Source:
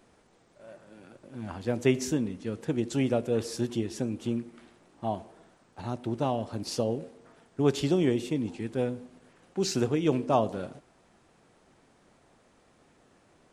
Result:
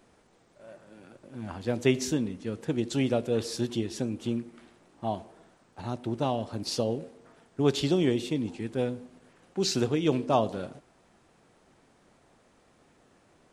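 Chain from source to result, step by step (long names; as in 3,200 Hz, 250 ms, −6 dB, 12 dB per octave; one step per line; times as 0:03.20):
dynamic equaliser 3,900 Hz, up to +6 dB, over −53 dBFS, Q 1.7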